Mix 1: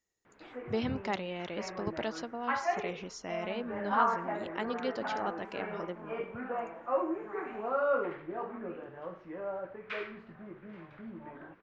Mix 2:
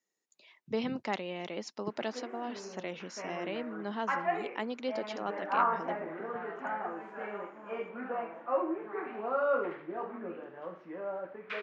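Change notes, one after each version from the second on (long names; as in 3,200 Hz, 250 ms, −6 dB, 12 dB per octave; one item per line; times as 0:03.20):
background: entry +1.60 s
master: add high-pass filter 170 Hz 24 dB per octave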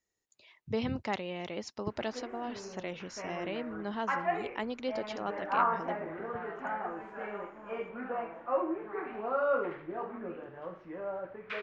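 master: remove high-pass filter 170 Hz 24 dB per octave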